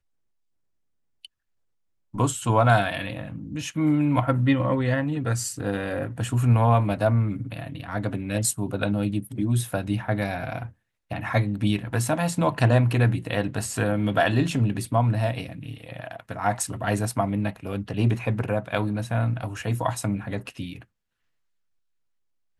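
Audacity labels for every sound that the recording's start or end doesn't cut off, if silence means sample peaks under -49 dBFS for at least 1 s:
1.250000	20.840000	sound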